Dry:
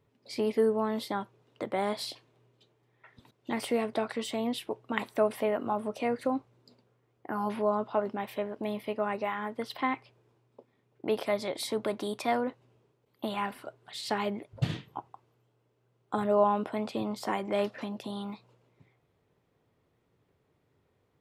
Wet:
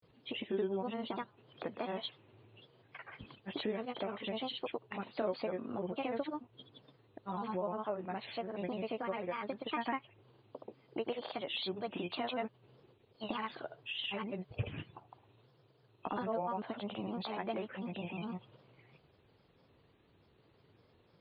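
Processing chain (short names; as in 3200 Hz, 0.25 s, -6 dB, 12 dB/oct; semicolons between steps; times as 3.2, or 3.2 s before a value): nonlinear frequency compression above 2700 Hz 4:1; compressor 2.5:1, threshold -46 dBFS, peak gain reduction 18 dB; grains, grains 20/s, pitch spread up and down by 3 st; gain +6 dB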